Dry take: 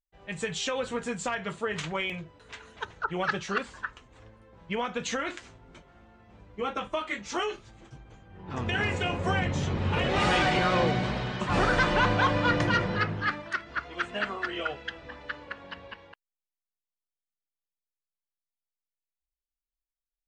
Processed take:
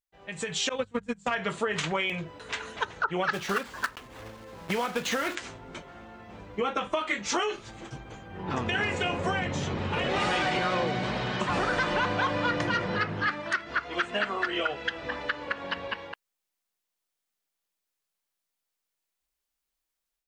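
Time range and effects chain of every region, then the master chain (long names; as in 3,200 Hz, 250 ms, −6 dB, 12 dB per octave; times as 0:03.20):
0:00.69–0:01.31: noise gate −30 dBFS, range −31 dB + bass and treble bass +12 dB, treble +2 dB + mains-hum notches 50/100/150/200 Hz
0:03.33–0:05.37: one scale factor per block 3 bits + high-shelf EQ 5,800 Hz −10.5 dB
whole clip: downward compressor 4 to 1, threshold −37 dBFS; low-shelf EQ 110 Hz −11.5 dB; automatic gain control gain up to 10 dB; level +1 dB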